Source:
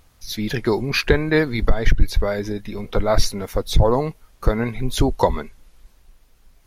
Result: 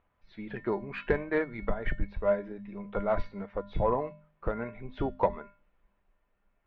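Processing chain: low-pass 2.8 kHz 24 dB/octave; feedback comb 200 Hz, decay 0.38 s, harmonics odd, mix 80%; de-hum 51.81 Hz, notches 5; overdrive pedal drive 11 dB, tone 1 kHz, clips at -14.5 dBFS; upward expansion 1.5:1, over -38 dBFS; trim +4.5 dB

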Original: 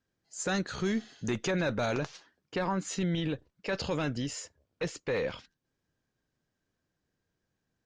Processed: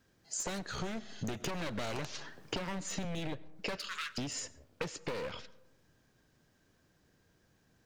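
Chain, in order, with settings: one-sided wavefolder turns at -30.5 dBFS; 3.77–4.18 s: elliptic high-pass 1.2 kHz, stop band 40 dB; compression 8:1, threshold -48 dBFS, peak gain reduction 19.5 dB; algorithmic reverb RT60 0.97 s, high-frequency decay 0.35×, pre-delay 60 ms, DRR 19.5 dB; 1.40–3.05 s: three bands compressed up and down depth 70%; trim +12 dB

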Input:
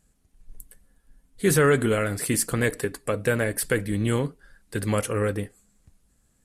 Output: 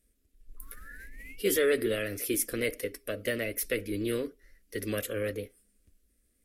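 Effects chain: painted sound rise, 0.57–1.65 s, 1–3 kHz -38 dBFS; formant shift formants +3 st; static phaser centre 360 Hz, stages 4; trim -4.5 dB

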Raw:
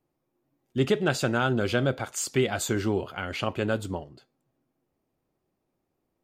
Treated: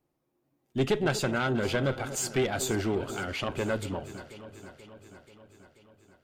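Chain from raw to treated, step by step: single-diode clipper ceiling -22 dBFS; echo whose repeats swap between lows and highs 242 ms, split 1 kHz, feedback 78%, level -12.5 dB

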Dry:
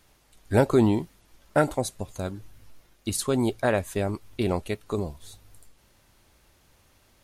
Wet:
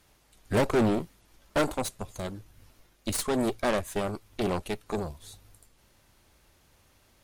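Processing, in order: Chebyshev shaper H 6 -13 dB, 7 -29 dB, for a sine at -8 dBFS; saturation -19.5 dBFS, distortion -7 dB; trim +1 dB

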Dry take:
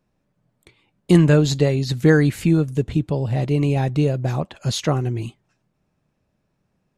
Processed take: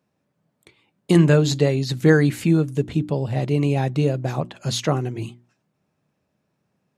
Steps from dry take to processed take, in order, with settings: high-pass 110 Hz; hum notches 60/120/180/240/300/360 Hz

